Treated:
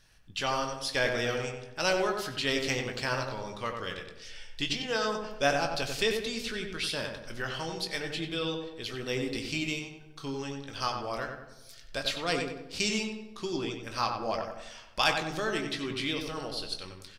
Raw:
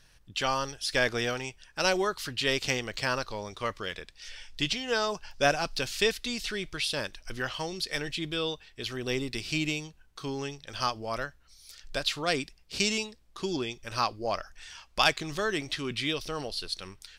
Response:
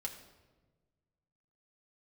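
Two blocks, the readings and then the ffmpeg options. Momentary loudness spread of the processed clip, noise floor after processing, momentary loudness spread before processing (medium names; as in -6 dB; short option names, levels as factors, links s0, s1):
11 LU, -51 dBFS, 11 LU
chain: -filter_complex "[0:a]asplit=2[s0][s1];[s1]adelay=93,lowpass=f=1800:p=1,volume=0.631,asplit=2[s2][s3];[s3]adelay=93,lowpass=f=1800:p=1,volume=0.49,asplit=2[s4][s5];[s5]adelay=93,lowpass=f=1800:p=1,volume=0.49,asplit=2[s6][s7];[s7]adelay=93,lowpass=f=1800:p=1,volume=0.49,asplit=2[s8][s9];[s9]adelay=93,lowpass=f=1800:p=1,volume=0.49,asplit=2[s10][s11];[s11]adelay=93,lowpass=f=1800:p=1,volume=0.49[s12];[s0][s2][s4][s6][s8][s10][s12]amix=inputs=7:normalize=0,asplit=2[s13][s14];[1:a]atrim=start_sample=2205,adelay=18[s15];[s14][s15]afir=irnorm=-1:irlink=0,volume=0.531[s16];[s13][s16]amix=inputs=2:normalize=0,volume=0.708"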